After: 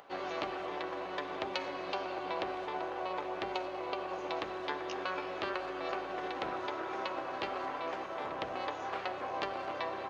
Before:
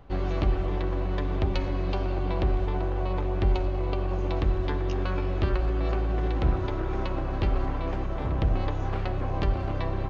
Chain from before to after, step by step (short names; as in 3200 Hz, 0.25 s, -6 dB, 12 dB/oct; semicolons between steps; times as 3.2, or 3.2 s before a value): HPF 580 Hz 12 dB/oct; upward compressor, threshold -51 dBFS